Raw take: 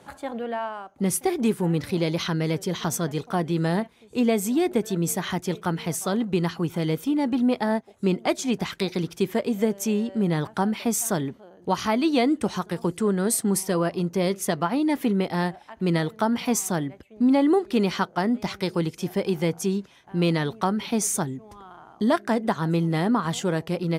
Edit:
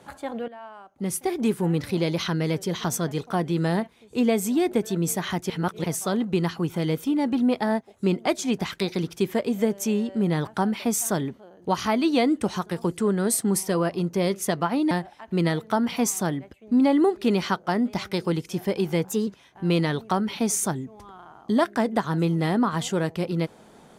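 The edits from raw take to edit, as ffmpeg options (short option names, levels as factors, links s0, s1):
-filter_complex "[0:a]asplit=7[s0][s1][s2][s3][s4][s5][s6];[s0]atrim=end=0.48,asetpts=PTS-STARTPTS,afade=t=out:st=0.476:d=0.004:c=hsin:silence=0.158489[s7];[s1]atrim=start=0.48:end=5.502,asetpts=PTS-STARTPTS,afade=t=in:d=1.1:silence=0.158489[s8];[s2]atrim=start=5.498:end=5.842,asetpts=PTS-STARTPTS,areverse[s9];[s3]atrim=start=5.838:end=14.912[s10];[s4]atrim=start=15.398:end=19.544[s11];[s5]atrim=start=19.54:end=19.79,asetpts=PTS-STARTPTS,asetrate=49392,aresample=44100[s12];[s6]atrim=start=19.786[s13];[s7][s8]concat=n=2:v=0:a=1[s14];[s14][s9]acrossfade=d=0.004:c1=hsin:c2=hsin[s15];[s15][s10]acrossfade=d=0.004:c1=hsin:c2=hsin[s16];[s16][s11]acrossfade=d=0.004:c1=hsin:c2=hsin[s17];[s17][s12]acrossfade=d=0.004:c1=hsin:c2=hsin[s18];[s18][s13]acrossfade=d=0.004:c1=hsin:c2=hsin"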